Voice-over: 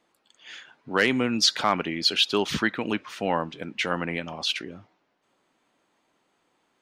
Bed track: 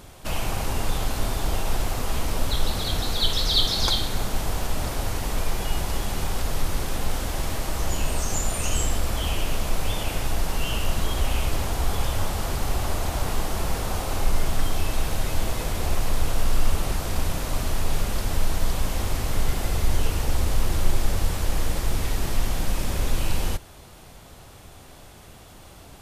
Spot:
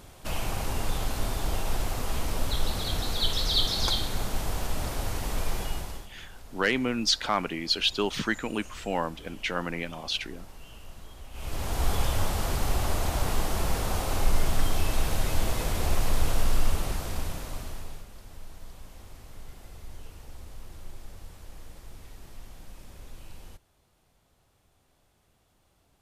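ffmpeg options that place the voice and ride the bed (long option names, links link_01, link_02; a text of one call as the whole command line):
ffmpeg -i stem1.wav -i stem2.wav -filter_complex "[0:a]adelay=5650,volume=-3.5dB[link_01];[1:a]volume=16dB,afade=type=out:start_time=5.57:duration=0.52:silence=0.133352,afade=type=in:start_time=11.32:duration=0.54:silence=0.1,afade=type=out:start_time=16.32:duration=1.74:silence=0.1[link_02];[link_01][link_02]amix=inputs=2:normalize=0" out.wav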